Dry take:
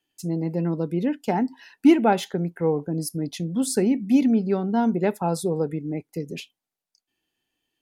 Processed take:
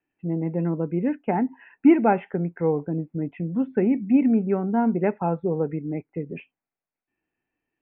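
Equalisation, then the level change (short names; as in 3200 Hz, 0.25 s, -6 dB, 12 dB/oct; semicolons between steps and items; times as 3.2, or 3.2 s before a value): steep low-pass 2600 Hz 72 dB/oct; air absorption 55 m; 0.0 dB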